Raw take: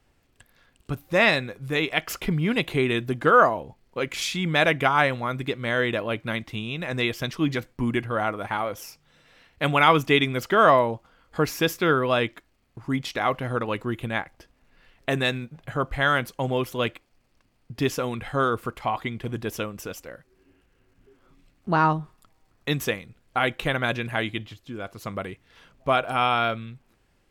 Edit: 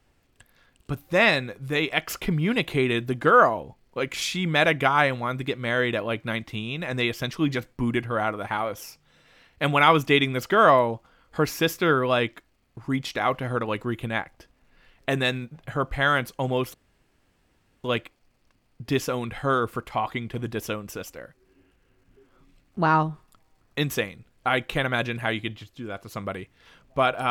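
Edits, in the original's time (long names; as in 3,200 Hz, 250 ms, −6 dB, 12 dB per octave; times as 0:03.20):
0:16.74: splice in room tone 1.10 s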